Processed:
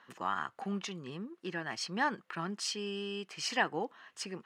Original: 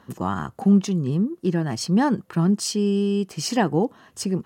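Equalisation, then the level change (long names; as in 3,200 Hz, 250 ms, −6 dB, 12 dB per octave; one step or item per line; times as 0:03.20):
resonant band-pass 2,100 Hz, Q 1.1
0.0 dB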